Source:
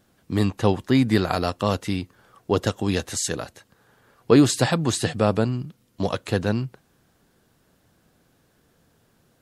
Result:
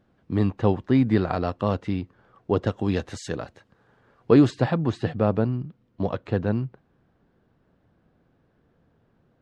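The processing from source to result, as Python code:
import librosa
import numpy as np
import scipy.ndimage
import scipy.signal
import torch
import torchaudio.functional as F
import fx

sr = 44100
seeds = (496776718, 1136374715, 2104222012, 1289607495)

y = fx.spacing_loss(x, sr, db_at_10k=fx.steps((0.0, 30.0), (2.73, 23.0), (4.49, 37.0)))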